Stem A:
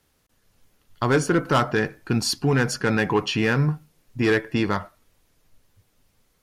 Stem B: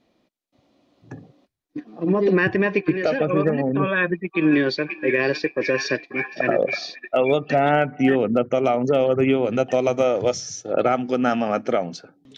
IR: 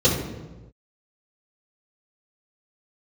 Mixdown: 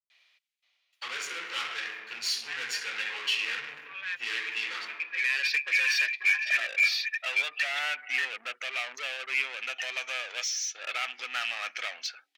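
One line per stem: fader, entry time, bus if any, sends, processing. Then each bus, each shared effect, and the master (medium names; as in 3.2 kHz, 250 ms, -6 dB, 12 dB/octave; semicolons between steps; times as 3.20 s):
-16.0 dB, 0.00 s, send -5 dB, small samples zeroed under -44.5 dBFS
-1.0 dB, 0.10 s, no send, auto duck -16 dB, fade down 0.75 s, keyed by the first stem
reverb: on, pre-delay 3 ms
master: overdrive pedal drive 14 dB, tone 4.4 kHz, clips at -22 dBFS; resonant high-pass 2.3 kHz, resonance Q 1.9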